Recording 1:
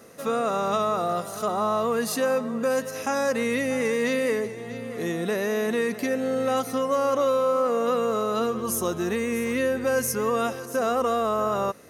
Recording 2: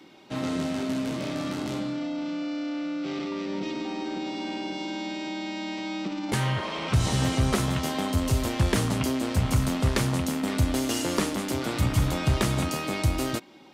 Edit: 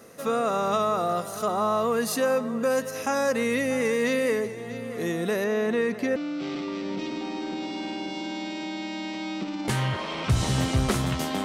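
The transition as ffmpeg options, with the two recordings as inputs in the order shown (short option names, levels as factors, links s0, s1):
-filter_complex "[0:a]asettb=1/sr,asplit=3[s0][s1][s2];[s0]atrim=end=5.444[s3];[s1]atrim=start=5.44:end=6.16,asetpts=PTS-STARTPTS,afade=t=in:d=0.004:c=qsin,afade=t=out:st=0.716:d=0.004:c=qsin,aemphasis=mode=reproduction:type=50fm[s4];[s2]atrim=start=6.156[s5];[s3][s4]acrossfade=d=0.004:c1=hsin:c2=qsin[s6];[s6][s5]acrossfade=d=0.004:c1=qsin:c2=hsin,apad=whole_dur=11.44,atrim=end=11.44,atrim=end=6.162[s7];[1:a]atrim=start=2.798:end=8.08[s8];[s7][s8]acrossfade=d=0.004:c1=hsin:c2=hsin"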